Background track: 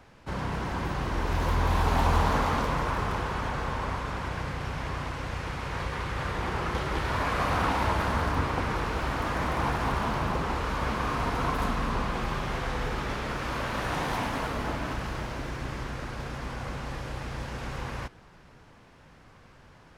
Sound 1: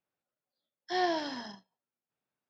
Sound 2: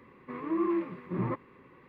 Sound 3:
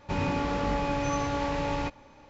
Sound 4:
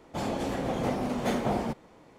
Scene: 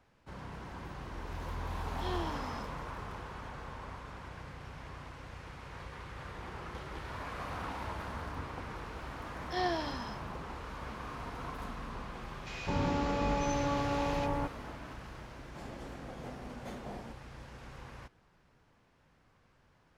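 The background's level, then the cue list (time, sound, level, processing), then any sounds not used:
background track -13.5 dB
1.11 add 1 -10 dB + moving spectral ripple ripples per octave 0.68, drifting -0.86 Hz, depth 11 dB
8.62 add 1 -3.5 dB
12.37 add 3 -3 dB + bands offset in time highs, lows 0.21 s, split 1800 Hz
15.4 add 4 -16.5 dB
not used: 2

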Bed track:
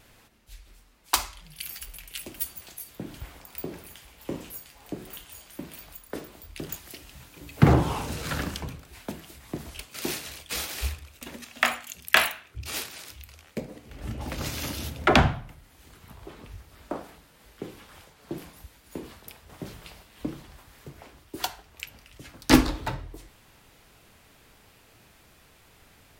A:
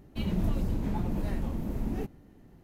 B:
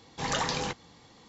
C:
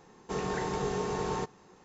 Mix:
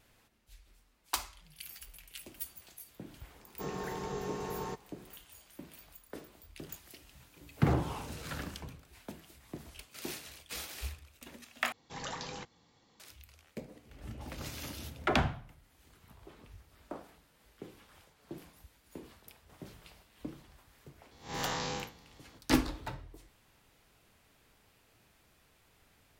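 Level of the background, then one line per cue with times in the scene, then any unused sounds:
bed track -10 dB
3.3 add C -6.5 dB
11.72 replace with B -11.5 dB
21.11 add B -3.5 dB + time blur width 0.116 s
not used: A

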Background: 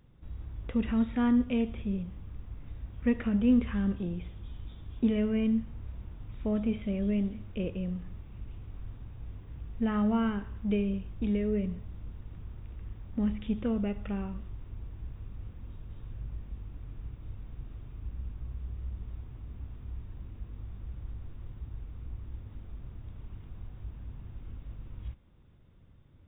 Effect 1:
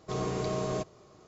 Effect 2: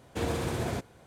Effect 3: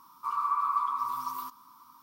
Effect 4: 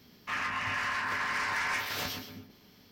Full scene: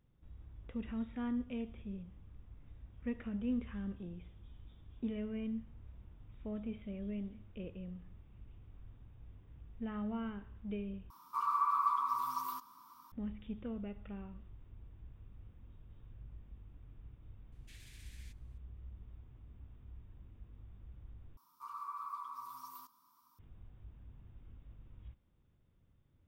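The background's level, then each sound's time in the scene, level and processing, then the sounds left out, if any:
background -12 dB
11.1 replace with 3 -3.5 dB
17.52 add 2 -17.5 dB + steep high-pass 1800 Hz 48 dB/oct
21.37 replace with 3 -15.5 dB + tone controls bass +2 dB, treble +6 dB
not used: 1, 4

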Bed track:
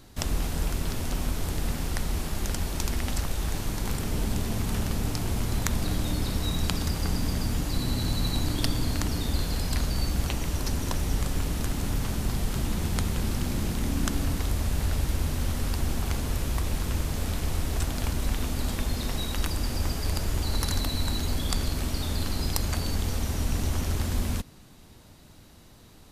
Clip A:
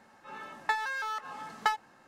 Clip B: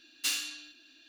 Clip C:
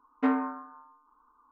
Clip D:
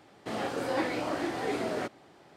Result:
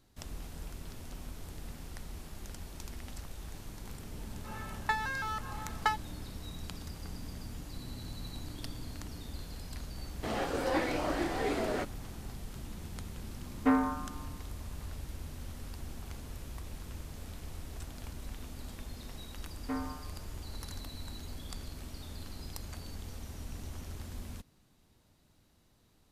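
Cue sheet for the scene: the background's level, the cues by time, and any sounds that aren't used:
bed track -15.5 dB
4.2 add A -2 dB
9.97 add D -1 dB
13.43 add C -0.5 dB
19.46 add C -11 dB
not used: B

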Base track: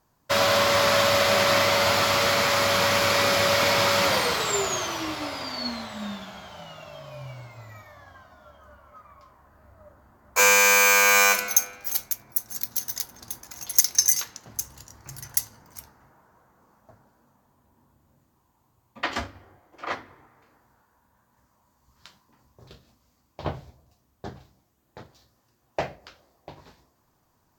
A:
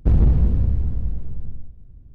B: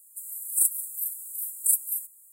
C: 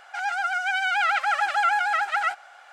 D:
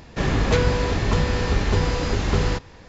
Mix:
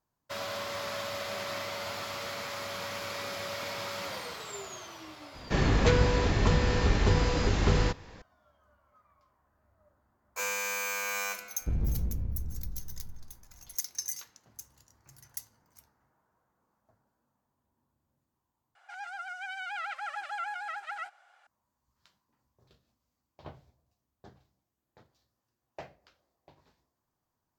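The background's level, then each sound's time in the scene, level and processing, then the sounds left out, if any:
base track -16 dB
5.34 add D -4 dB
11.61 add A -14.5 dB
18.75 replace with C -14.5 dB
not used: B

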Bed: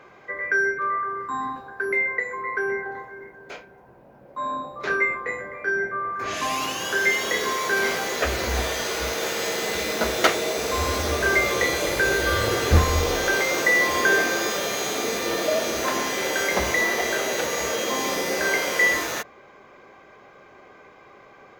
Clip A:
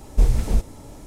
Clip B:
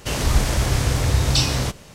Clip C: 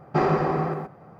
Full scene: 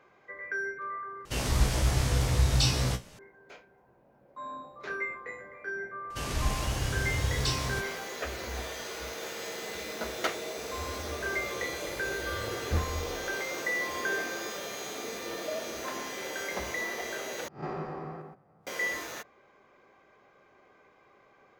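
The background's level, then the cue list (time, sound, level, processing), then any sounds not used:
bed -12 dB
1.25 replace with B -2.5 dB + resonator 62 Hz, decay 0.18 s, mix 90%
6.1 add B -11.5 dB
17.48 replace with C -16 dB + spectral swells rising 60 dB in 0.32 s
not used: A

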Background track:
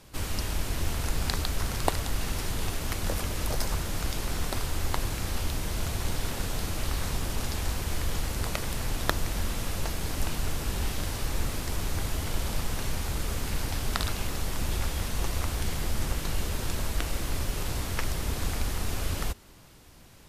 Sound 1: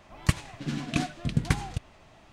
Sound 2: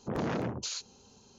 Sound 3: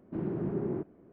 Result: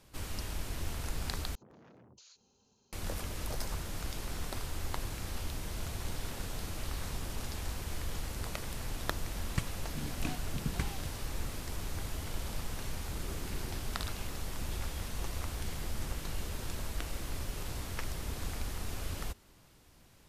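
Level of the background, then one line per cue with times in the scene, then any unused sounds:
background track -8 dB
1.55 replace with 2 -12.5 dB + compressor 12:1, threshold -42 dBFS
9.29 add 1 -11 dB
12.98 add 3 -13 dB + level quantiser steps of 12 dB

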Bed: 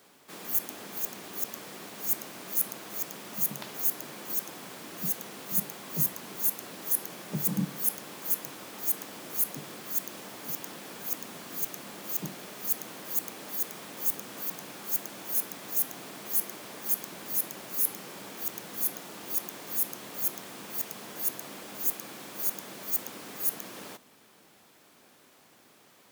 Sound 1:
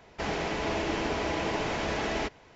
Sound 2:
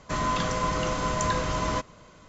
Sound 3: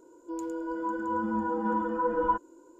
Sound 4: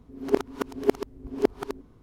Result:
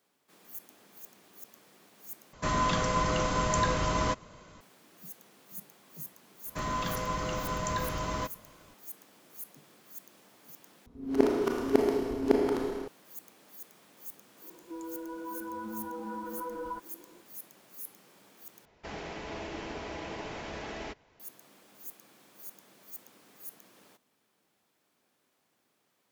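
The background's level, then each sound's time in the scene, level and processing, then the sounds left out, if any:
bed -16 dB
2.33 replace with 2 -1 dB
6.46 add 2 -6 dB
10.86 replace with 4 -3 dB + Schroeder reverb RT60 2 s, combs from 26 ms, DRR -1.5 dB
14.42 add 3 -1.5 dB + compressor 2.5:1, threshold -38 dBFS
18.65 replace with 1 -9.5 dB

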